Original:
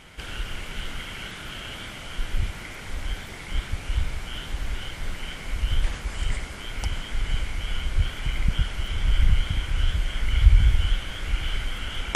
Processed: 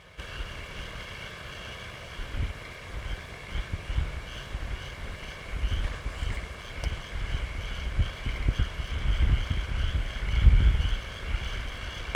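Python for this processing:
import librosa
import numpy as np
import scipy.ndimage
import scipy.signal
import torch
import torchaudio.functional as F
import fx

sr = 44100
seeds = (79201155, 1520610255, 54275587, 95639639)

y = fx.lower_of_two(x, sr, delay_ms=1.8)
y = scipy.signal.sosfilt(scipy.signal.butter(2, 48.0, 'highpass', fs=sr, output='sos'), y)
y = fx.high_shelf(y, sr, hz=4600.0, db=-11.5)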